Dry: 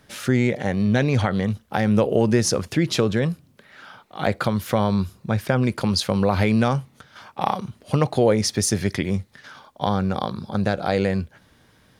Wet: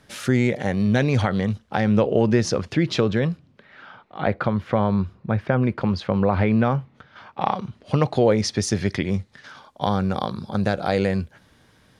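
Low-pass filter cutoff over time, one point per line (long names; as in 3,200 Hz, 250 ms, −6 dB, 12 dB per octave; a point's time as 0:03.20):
0:00.96 12,000 Hz
0:02.06 4,600 Hz
0:03.21 4,600 Hz
0:04.41 2,200 Hz
0:06.68 2,200 Hz
0:08.06 5,700 Hz
0:08.98 5,700 Hz
0:09.89 12,000 Hz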